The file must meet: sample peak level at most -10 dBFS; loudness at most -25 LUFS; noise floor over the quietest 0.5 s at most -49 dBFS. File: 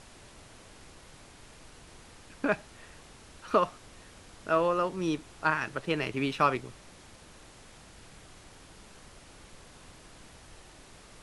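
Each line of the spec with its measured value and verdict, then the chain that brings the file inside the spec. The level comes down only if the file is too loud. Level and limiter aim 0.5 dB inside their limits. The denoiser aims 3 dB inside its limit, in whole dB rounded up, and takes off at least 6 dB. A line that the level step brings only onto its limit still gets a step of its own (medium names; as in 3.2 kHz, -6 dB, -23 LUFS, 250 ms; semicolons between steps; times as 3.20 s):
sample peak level -11.0 dBFS: pass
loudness -30.0 LUFS: pass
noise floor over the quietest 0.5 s -52 dBFS: pass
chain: none needed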